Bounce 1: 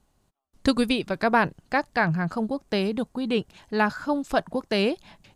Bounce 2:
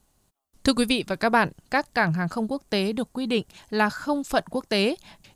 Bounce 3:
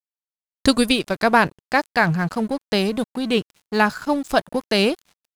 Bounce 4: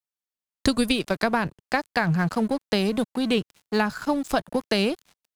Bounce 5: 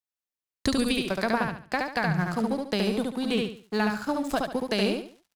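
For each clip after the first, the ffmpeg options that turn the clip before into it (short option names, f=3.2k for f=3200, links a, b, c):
-af "highshelf=f=5.1k:g=10"
-af "aeval=exprs='sgn(val(0))*max(abs(val(0))-0.00794,0)':c=same,volume=5dB"
-filter_complex "[0:a]acrossover=split=180[a][b];[b]acompressor=threshold=-19dB:ratio=10[c];[a][c]amix=inputs=2:normalize=0"
-af "aecho=1:1:71|142|213|284:0.708|0.219|0.068|0.0211,volume=-4.5dB"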